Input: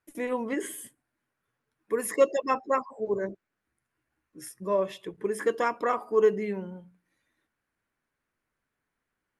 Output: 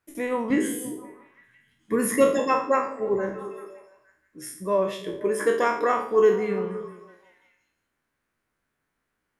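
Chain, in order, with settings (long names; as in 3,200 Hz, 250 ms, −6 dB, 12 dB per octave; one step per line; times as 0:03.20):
peak hold with a decay on every bin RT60 0.50 s
0:00.50–0:02.39: low shelf with overshoot 300 Hz +9.5 dB, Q 1.5
echo through a band-pass that steps 170 ms, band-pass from 220 Hz, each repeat 0.7 octaves, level −9 dB
level +2.5 dB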